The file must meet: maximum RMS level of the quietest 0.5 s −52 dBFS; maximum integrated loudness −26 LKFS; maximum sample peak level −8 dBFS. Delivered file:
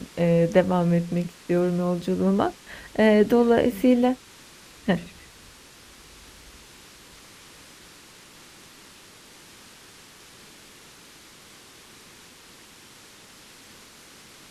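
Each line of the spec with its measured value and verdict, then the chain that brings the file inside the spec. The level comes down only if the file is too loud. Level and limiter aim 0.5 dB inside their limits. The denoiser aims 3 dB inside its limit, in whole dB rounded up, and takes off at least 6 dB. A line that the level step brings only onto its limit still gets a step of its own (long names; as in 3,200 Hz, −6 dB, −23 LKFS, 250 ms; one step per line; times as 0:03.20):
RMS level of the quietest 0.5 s −49 dBFS: out of spec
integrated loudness −22.5 LKFS: out of spec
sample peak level −5.5 dBFS: out of spec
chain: level −4 dB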